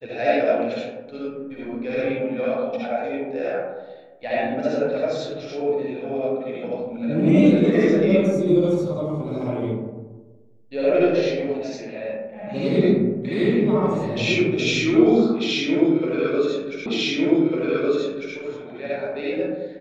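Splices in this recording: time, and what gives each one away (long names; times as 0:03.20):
0:16.86: the same again, the last 1.5 s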